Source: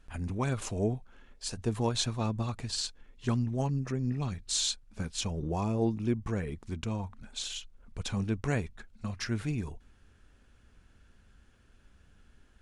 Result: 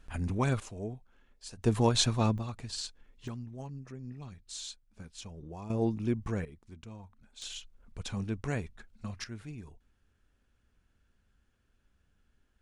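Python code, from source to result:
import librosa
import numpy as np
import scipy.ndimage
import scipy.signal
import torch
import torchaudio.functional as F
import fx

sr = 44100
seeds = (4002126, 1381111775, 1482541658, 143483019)

y = fx.gain(x, sr, db=fx.steps((0.0, 2.0), (0.6, -9.0), (1.64, 4.0), (2.38, -4.5), (3.28, -12.0), (5.7, -1.0), (6.45, -13.0), (7.42, -3.5), (9.24, -11.0)))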